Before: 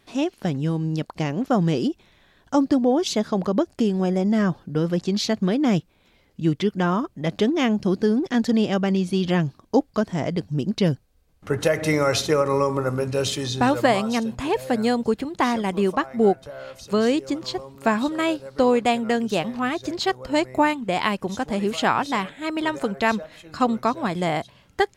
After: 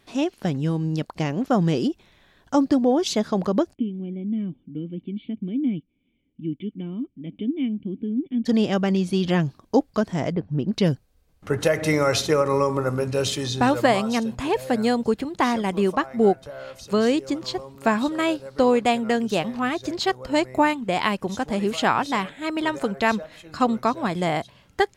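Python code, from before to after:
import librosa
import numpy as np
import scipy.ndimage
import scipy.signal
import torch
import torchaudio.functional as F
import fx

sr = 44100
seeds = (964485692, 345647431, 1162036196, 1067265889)

y = fx.formant_cascade(x, sr, vowel='i', at=(3.73, 8.45), fade=0.02)
y = fx.lowpass(y, sr, hz=fx.line((10.31, 1300.0), (10.72, 3200.0)), slope=12, at=(10.31, 10.72), fade=0.02)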